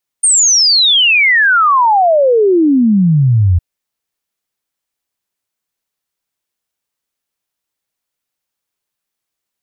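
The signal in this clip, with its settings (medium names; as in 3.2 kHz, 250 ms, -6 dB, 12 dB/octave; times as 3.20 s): log sweep 9 kHz -> 83 Hz 3.36 s -6.5 dBFS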